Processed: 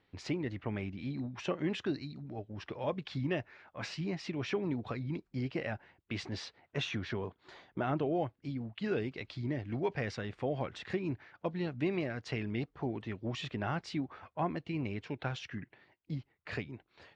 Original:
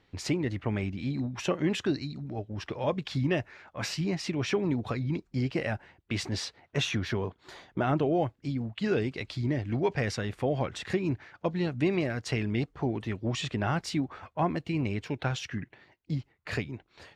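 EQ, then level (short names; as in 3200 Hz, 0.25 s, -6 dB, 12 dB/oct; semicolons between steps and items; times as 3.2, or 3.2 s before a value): LPF 4500 Hz 12 dB/oct; low shelf 80 Hz -6.5 dB; -5.5 dB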